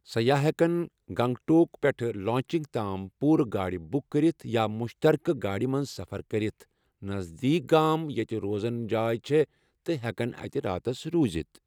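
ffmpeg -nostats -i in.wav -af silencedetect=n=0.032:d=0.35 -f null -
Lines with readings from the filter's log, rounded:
silence_start: 6.50
silence_end: 7.04 | silence_duration: 0.55
silence_start: 9.44
silence_end: 9.89 | silence_duration: 0.45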